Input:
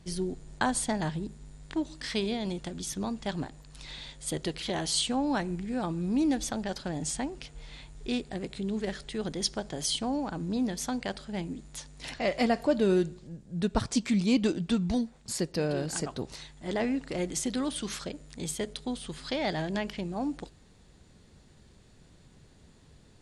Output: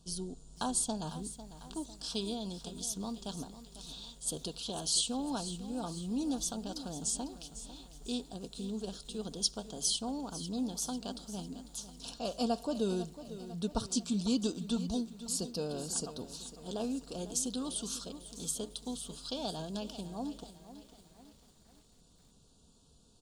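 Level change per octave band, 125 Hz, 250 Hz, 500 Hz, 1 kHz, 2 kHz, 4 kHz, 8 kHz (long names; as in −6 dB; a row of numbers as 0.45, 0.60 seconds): −8.0, −6.5, −8.0, −7.0, −17.5, −2.5, +0.5 decibels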